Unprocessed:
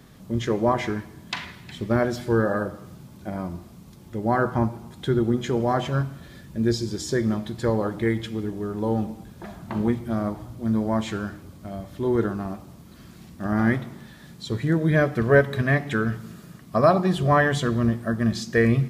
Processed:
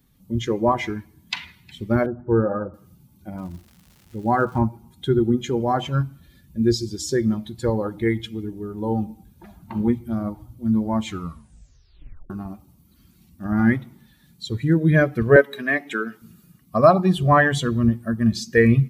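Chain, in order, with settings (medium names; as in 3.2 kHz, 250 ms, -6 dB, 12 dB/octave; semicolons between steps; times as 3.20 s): expander on every frequency bin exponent 1.5; 2.06–2.74 s: steep low-pass 1.4 kHz 48 dB/octave; 3.37–4.60 s: crackle 370 per s -47 dBFS; 11.06 s: tape stop 1.24 s; 15.36–16.22 s: high-pass 270 Hz 24 dB/octave; trim +5.5 dB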